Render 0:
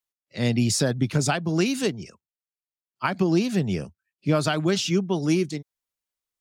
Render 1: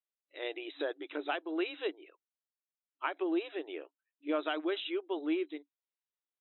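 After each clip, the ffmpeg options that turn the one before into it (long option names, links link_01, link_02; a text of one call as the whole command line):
ffmpeg -i in.wav -af "afftfilt=real='re*between(b*sr/4096,290,4000)':imag='im*between(b*sr/4096,290,4000)':win_size=4096:overlap=0.75,volume=-9dB" out.wav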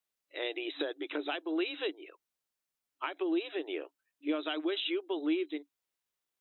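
ffmpeg -i in.wav -filter_complex "[0:a]acrossover=split=260|3000[link_01][link_02][link_03];[link_02]acompressor=threshold=-42dB:ratio=6[link_04];[link_01][link_04][link_03]amix=inputs=3:normalize=0,volume=7dB" out.wav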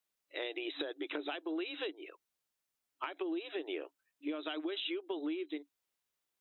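ffmpeg -i in.wav -af "acompressor=threshold=-36dB:ratio=6,volume=1dB" out.wav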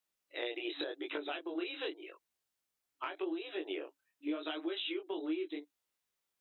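ffmpeg -i in.wav -af "flanger=delay=18:depth=7.9:speed=0.86,volume=3dB" out.wav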